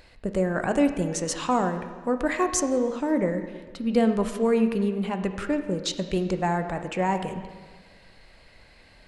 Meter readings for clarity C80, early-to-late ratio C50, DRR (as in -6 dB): 10.0 dB, 9.0 dB, 7.0 dB